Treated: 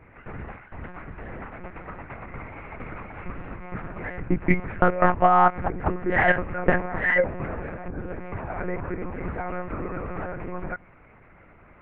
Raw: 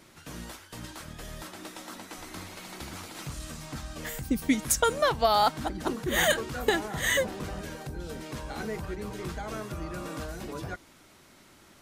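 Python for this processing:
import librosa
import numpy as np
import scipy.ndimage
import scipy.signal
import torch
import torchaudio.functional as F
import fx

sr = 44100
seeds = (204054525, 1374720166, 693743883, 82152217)

y = scipy.signal.sosfilt(scipy.signal.ellip(4, 1.0, 50, 2300.0, 'lowpass', fs=sr, output='sos'), x)
y = fx.low_shelf(y, sr, hz=64.0, db=-3.5)
y = fx.lpc_monotone(y, sr, seeds[0], pitch_hz=180.0, order=8)
y = y * librosa.db_to_amplitude(6.5)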